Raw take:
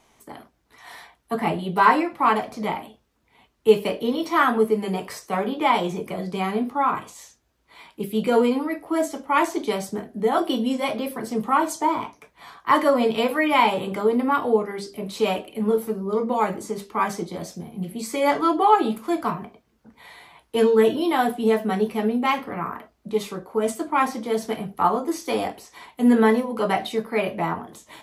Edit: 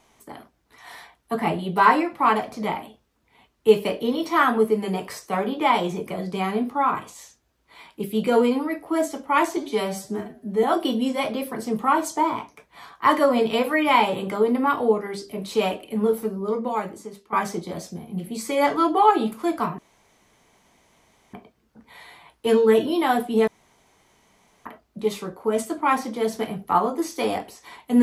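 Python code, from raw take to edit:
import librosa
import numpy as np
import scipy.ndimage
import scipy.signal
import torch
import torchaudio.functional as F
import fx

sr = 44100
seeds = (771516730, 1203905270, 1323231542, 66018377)

y = fx.edit(x, sr, fx.stretch_span(start_s=9.57, length_s=0.71, factor=1.5),
    fx.fade_out_to(start_s=15.92, length_s=1.05, floor_db=-14.0),
    fx.insert_room_tone(at_s=19.43, length_s=1.55),
    fx.room_tone_fill(start_s=21.57, length_s=1.18), tone=tone)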